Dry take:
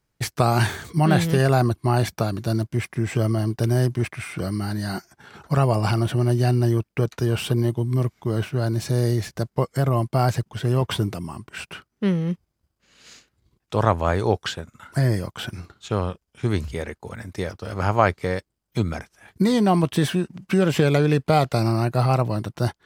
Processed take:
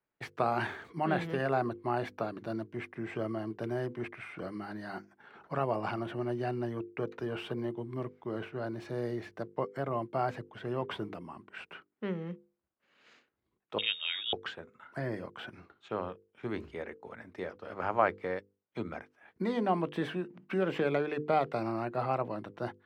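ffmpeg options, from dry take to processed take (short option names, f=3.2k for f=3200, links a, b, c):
-filter_complex "[0:a]asettb=1/sr,asplit=3[a][b][c];[a]atrim=end=13.784[d];[b]atrim=start=13.78:end=14.33,asetpts=PTS-STARTPTS,afade=t=in:d=0.004:c=qsin,afade=t=out:st=0.546:d=0.004:c=qsin,lowpass=f=3.2k:t=q:w=0.5098,lowpass=f=3.2k:t=q:w=0.6013,lowpass=f=3.2k:t=q:w=0.9,lowpass=f=3.2k:t=q:w=2.563,afreqshift=-3800[e];[c]atrim=start=14.326[f];[d][e]acrossfade=d=0.004:c1=hsin:c2=qsin[g];[g][f]acrossfade=d=0.004:c1=qsin:c2=hsin,acrossover=split=220 3000:gain=0.158 1 0.0794[h][i][j];[h][i][j]amix=inputs=3:normalize=0,bandreject=f=50:t=h:w=6,bandreject=f=100:t=h:w=6,bandreject=f=150:t=h:w=6,bandreject=f=200:t=h:w=6,bandreject=f=250:t=h:w=6,bandreject=f=300:t=h:w=6,bandreject=f=350:t=h:w=6,bandreject=f=400:t=h:w=6,bandreject=f=450:t=h:w=6,bandreject=f=500:t=h:w=6,volume=-8dB"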